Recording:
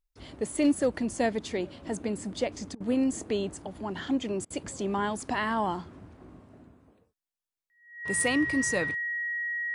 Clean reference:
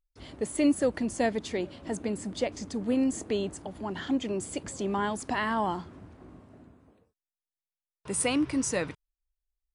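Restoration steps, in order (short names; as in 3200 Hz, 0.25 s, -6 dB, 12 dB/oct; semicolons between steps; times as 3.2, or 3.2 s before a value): clip repair -17 dBFS; notch 1900 Hz, Q 30; interpolate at 2.75/4.45, 52 ms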